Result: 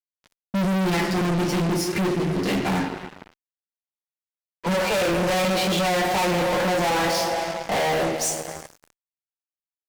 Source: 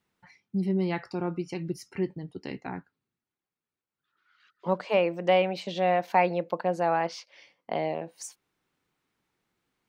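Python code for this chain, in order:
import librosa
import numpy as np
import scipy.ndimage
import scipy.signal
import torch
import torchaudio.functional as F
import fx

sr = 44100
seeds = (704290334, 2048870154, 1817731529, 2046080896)

y = fx.leveller(x, sr, passes=1)
y = fx.rev_double_slope(y, sr, seeds[0], early_s=0.3, late_s=2.6, knee_db=-19, drr_db=-4.5)
y = fx.fuzz(y, sr, gain_db=35.0, gate_db=-42.0)
y = F.gain(torch.from_numpy(y), -7.5).numpy()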